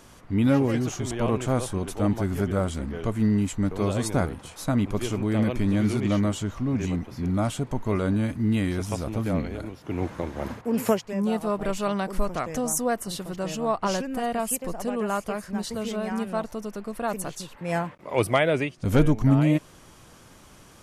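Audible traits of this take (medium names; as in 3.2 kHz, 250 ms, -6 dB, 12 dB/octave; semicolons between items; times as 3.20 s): noise floor -51 dBFS; spectral tilt -6.0 dB/octave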